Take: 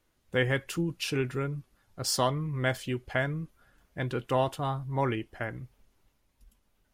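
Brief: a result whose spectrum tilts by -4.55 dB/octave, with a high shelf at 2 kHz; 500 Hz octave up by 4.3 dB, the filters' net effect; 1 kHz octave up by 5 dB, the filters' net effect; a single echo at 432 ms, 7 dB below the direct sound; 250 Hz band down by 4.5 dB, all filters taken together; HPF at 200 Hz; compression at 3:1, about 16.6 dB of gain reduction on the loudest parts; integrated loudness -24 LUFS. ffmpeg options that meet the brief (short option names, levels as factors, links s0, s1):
-af "highpass=200,equalizer=f=250:t=o:g=-7,equalizer=f=500:t=o:g=6,equalizer=f=1000:t=o:g=6.5,highshelf=f=2000:g=-8.5,acompressor=threshold=0.00891:ratio=3,aecho=1:1:432:0.447,volume=8.41"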